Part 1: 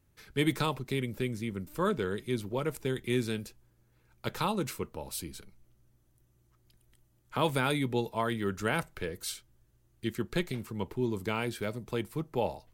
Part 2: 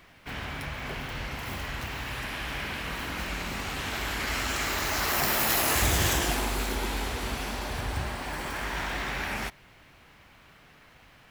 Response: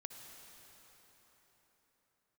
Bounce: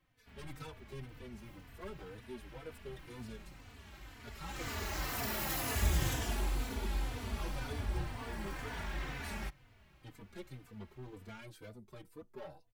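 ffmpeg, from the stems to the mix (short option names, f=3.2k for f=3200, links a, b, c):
-filter_complex "[0:a]aeval=exprs='(tanh(35.5*val(0)+0.75)-tanh(0.75))/35.5':c=same,asplit=2[a][b];[b]adelay=5,afreqshift=2.1[c];[a][c]amix=inputs=2:normalize=1,volume=-5.5dB[d];[1:a]lowshelf=f=220:g=10,volume=-9.5dB,afade=t=in:st=4.42:d=0.27:silence=0.251189[e];[d][e]amix=inputs=2:normalize=0,asplit=2[f][g];[g]adelay=3.3,afreqshift=-2[h];[f][h]amix=inputs=2:normalize=1"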